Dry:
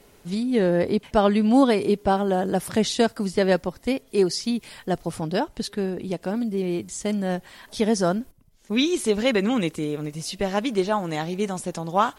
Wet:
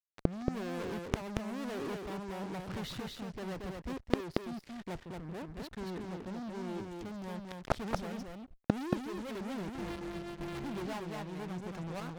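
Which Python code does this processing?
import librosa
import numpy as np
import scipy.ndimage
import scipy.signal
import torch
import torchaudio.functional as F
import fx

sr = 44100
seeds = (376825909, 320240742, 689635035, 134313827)

y = fx.sample_sort(x, sr, block=128, at=(9.68, 10.64))
y = scipy.signal.sosfilt(scipy.signal.butter(2, 2500.0, 'lowpass', fs=sr, output='sos'), y)
y = fx.low_shelf(y, sr, hz=94.0, db=10.5)
y = fx.level_steps(y, sr, step_db=11, at=(5.0, 5.48))
y = fx.rotary_switch(y, sr, hz=1.0, then_hz=5.0, switch_at_s=6.48)
y = fx.fuzz(y, sr, gain_db=36.0, gate_db=-44.0)
y = fx.tremolo_shape(y, sr, shape='saw_up', hz=1.0, depth_pct=45)
y = fx.gate_flip(y, sr, shuts_db=-24.0, range_db=-37)
y = y + 10.0 ** (-3.5 / 20.0) * np.pad(y, (int(229 * sr / 1000.0), 0))[:len(y)]
y = y * 10.0 ** (13.0 / 20.0)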